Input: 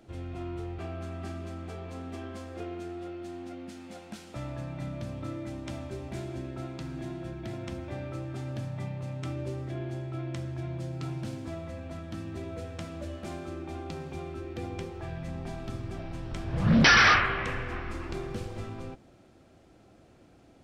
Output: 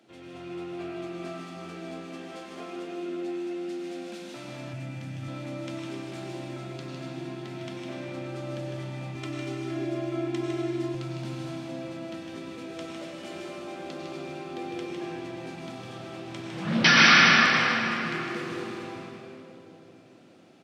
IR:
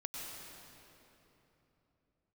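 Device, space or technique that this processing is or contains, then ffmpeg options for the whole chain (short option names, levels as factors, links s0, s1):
PA in a hall: -filter_complex "[0:a]highpass=f=160:w=0.5412,highpass=f=160:w=1.3066,equalizer=f=3200:t=o:w=2:g=6.5,aecho=1:1:155:0.501[s0];[1:a]atrim=start_sample=2205[s1];[s0][s1]afir=irnorm=-1:irlink=0,asettb=1/sr,asplit=3[s2][s3][s4];[s2]atrim=end=4.734[s5];[s3]atrim=start=4.73:end=5.28,asetpts=PTS-STARTPTS,afade=t=in:d=0.004:c=qsin,afade=t=out:st=0.546:d=0.004:c=qsin,equalizer=f=100:t=o:w=0.67:g=10,equalizer=f=400:t=o:w=0.67:g=-6,equalizer=f=1000:t=o:w=0.67:g=-8,equalizer=f=4000:t=o:w=0.67:g=-5[s6];[s4]atrim=start=5.276[s7];[s5][s6]acrossfade=d=0.004:c1=hsin:c2=qsin[s8];[s8][s7]acrossfade=d=0.004:c1=qsin:c2=hsin,asettb=1/sr,asplit=3[s9][s10][s11];[s9]atrim=end=9.154[s12];[s10]atrim=start=9.15:end=10.95,asetpts=PTS-STARTPTS,afade=t=in:d=0.004:c=qsin,afade=t=out:st=1.796:d=0.004:c=qsin,aecho=1:1:2.9:0.87,atrim=end_sample=79380[s13];[s11]atrim=start=10.946[s14];[s12][s13]acrossfade=d=0.004:c1=hsin:c2=qsin[s15];[s15][s14]acrossfade=d=0.004:c1=qsin:c2=hsin"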